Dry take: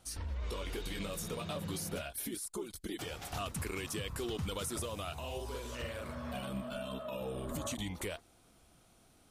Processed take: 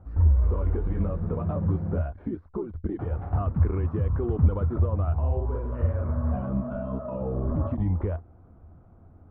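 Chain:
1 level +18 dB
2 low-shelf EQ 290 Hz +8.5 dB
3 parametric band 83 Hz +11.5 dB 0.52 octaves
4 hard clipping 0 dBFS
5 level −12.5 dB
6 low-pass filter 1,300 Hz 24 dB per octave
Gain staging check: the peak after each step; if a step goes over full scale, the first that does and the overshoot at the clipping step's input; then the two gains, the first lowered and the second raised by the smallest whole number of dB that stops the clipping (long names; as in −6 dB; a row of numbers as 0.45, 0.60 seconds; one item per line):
−9.0, −3.0, +4.0, 0.0, −12.5, −12.5 dBFS
step 3, 4.0 dB
step 1 +14 dB, step 5 −8.5 dB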